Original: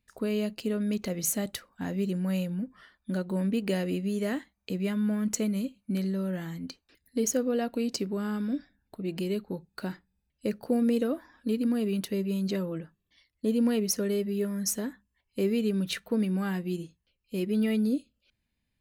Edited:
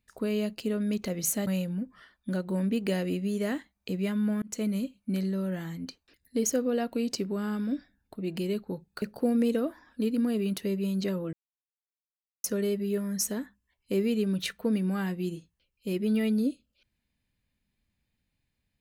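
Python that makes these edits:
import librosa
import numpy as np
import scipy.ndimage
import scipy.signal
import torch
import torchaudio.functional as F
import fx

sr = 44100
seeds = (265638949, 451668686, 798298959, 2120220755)

y = fx.edit(x, sr, fx.cut(start_s=1.47, length_s=0.81),
    fx.fade_in_span(start_s=5.23, length_s=0.25),
    fx.cut(start_s=9.83, length_s=0.66),
    fx.silence(start_s=12.8, length_s=1.11), tone=tone)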